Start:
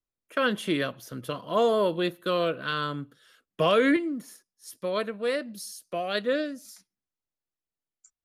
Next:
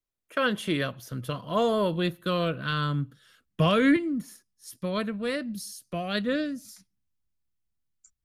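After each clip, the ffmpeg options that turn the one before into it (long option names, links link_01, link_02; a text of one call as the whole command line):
ffmpeg -i in.wav -af "asubboost=boost=7.5:cutoff=170" out.wav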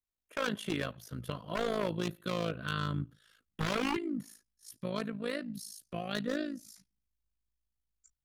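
ffmpeg -i in.wav -af "aeval=exprs='0.0944*(abs(mod(val(0)/0.0944+3,4)-2)-1)':channel_layout=same,tremolo=f=54:d=0.788,volume=-3dB" out.wav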